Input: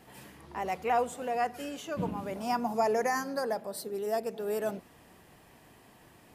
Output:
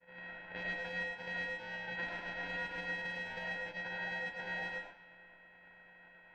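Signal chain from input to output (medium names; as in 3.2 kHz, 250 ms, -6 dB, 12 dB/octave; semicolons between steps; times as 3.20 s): sorted samples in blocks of 64 samples; high-pass 280 Hz 12 dB/octave; expander -53 dBFS; level-controlled noise filter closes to 1.4 kHz, open at -27.5 dBFS; compression 12:1, threshold -41 dBFS, peak gain reduction 19 dB; low-pass 2.2 kHz 12 dB/octave; ring modulator 1.2 kHz; algorithmic reverb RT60 0.41 s, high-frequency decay 0.6×, pre-delay 60 ms, DRR -2 dB; trim +3.5 dB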